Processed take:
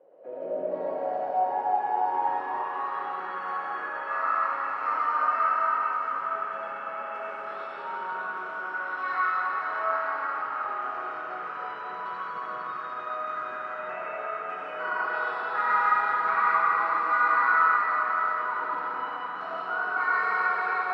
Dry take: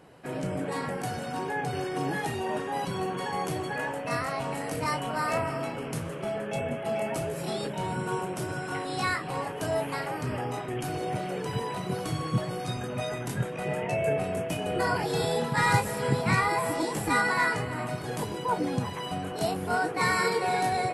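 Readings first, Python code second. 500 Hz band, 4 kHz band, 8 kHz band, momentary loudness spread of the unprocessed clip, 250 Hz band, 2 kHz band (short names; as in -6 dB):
-5.5 dB, -13.0 dB, under -30 dB, 8 LU, -16.0 dB, +3.0 dB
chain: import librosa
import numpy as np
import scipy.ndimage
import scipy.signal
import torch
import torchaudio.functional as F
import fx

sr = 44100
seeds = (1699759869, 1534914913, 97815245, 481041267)

y = fx.bandpass_edges(x, sr, low_hz=230.0, high_hz=4100.0)
y = fx.rev_freeverb(y, sr, rt60_s=4.8, hf_ratio=0.95, predelay_ms=35, drr_db=-8.0)
y = fx.filter_sweep_bandpass(y, sr, from_hz=540.0, to_hz=1300.0, start_s=0.53, end_s=3.31, q=7.5)
y = y * librosa.db_to_amplitude(6.0)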